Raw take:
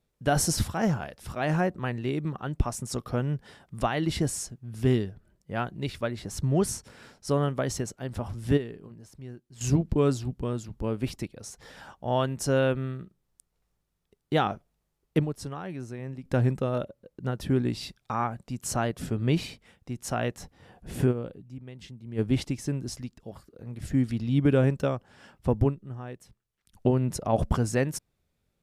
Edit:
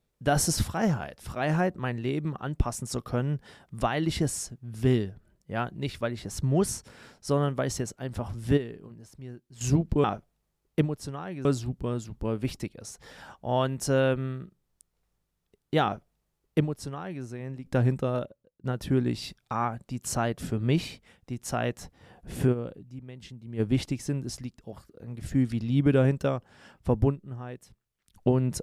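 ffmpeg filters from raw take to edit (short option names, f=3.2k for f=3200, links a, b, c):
-filter_complex "[0:a]asplit=4[a][b][c][d];[a]atrim=end=10.042[e];[b]atrim=start=14.418:end=15.832[f];[c]atrim=start=10.038:end=17.23,asetpts=PTS-STARTPTS,afade=t=out:st=6.702:d=0.49:c=qua:silence=0.11885[g];[d]atrim=start=17.23,asetpts=PTS-STARTPTS,afade=t=in:d=0.004:c=hsin:silence=0.11885[h];[e][f]acrossfade=d=0.004:c1=hsin:c2=hsin[i];[g][h]concat=n=2:v=0:a=1[j];[i][j]acrossfade=d=0.004:c1=hsin:c2=hsin"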